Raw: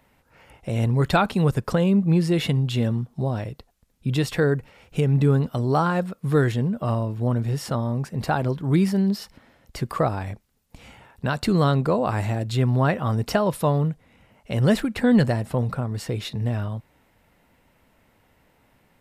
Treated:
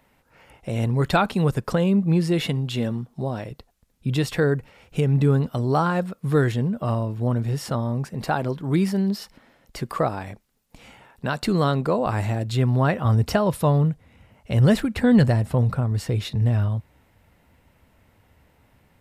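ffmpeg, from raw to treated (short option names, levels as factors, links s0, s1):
-af "asetnsamples=n=441:p=0,asendcmd='2.41 equalizer g -9;3.51 equalizer g 0;8.14 equalizer g -8;12.06 equalizer g 1;13.05 equalizer g 9.5',equalizer=f=78:t=o:w=1.3:g=-3"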